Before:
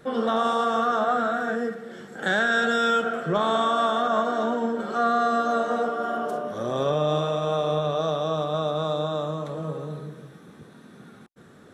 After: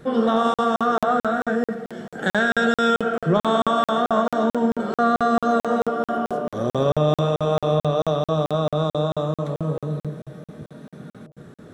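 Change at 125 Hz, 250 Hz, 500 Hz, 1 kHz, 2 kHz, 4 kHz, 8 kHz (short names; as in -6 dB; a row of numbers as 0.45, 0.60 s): +7.5 dB, +6.5 dB, +3.5 dB, +1.5 dB, +1.0 dB, +0.5 dB, n/a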